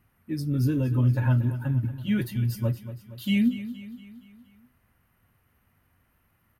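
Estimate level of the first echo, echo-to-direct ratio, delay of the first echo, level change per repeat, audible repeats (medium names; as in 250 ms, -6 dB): -13.5 dB, -12.0 dB, 234 ms, -5.5 dB, 4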